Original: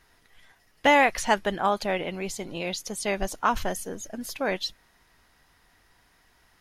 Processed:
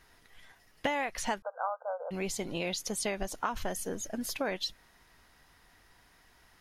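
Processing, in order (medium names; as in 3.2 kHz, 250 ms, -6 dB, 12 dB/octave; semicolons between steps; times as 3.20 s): compression 8:1, threshold -29 dBFS, peak gain reduction 14 dB; 1.42–2.11 s: brick-wall FIR band-pass 460–1600 Hz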